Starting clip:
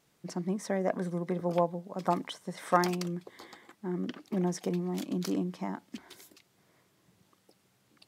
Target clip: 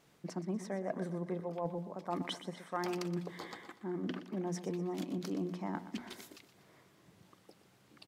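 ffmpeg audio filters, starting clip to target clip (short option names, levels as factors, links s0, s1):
-af "highshelf=f=4600:g=-6.5,bandreject=f=60:t=h:w=6,bandreject=f=120:t=h:w=6,bandreject=f=180:t=h:w=6,bandreject=f=240:t=h:w=6,areverse,acompressor=threshold=0.01:ratio=5,areverse,aecho=1:1:121|242|363|484:0.224|0.0963|0.0414|0.0178,volume=1.68"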